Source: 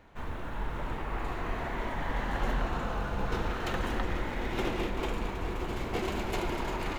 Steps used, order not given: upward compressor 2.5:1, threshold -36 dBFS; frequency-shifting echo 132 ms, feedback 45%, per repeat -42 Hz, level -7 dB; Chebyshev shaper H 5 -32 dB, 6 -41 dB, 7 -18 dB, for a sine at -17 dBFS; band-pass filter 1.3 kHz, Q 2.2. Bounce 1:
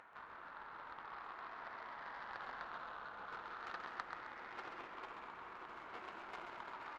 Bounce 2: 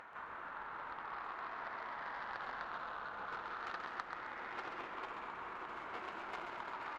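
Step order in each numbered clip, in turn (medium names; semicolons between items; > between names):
band-pass filter > upward compressor > Chebyshev shaper > frequency-shifting echo; band-pass filter > Chebyshev shaper > upward compressor > frequency-shifting echo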